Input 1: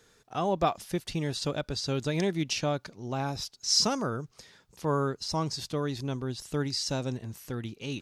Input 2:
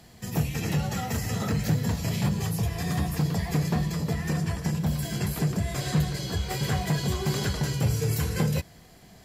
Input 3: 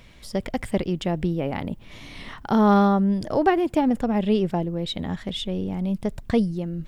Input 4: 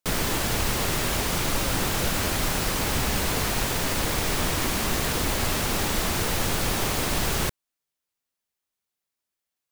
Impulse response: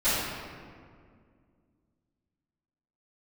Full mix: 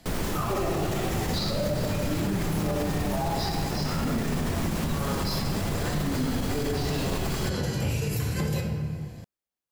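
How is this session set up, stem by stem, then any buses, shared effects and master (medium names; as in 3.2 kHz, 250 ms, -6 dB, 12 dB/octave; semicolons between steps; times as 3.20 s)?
+3.0 dB, 0.00 s, send -4 dB, step-sequenced band-pass 4 Hz 250–4300 Hz
-3.0 dB, 0.00 s, send -15 dB, none
-15.5 dB, 0.00 s, no send, none
-4.0 dB, 0.00 s, no send, tilt shelf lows +4.5 dB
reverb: on, RT60 2.1 s, pre-delay 3 ms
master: peak limiter -19 dBFS, peak gain reduction 10 dB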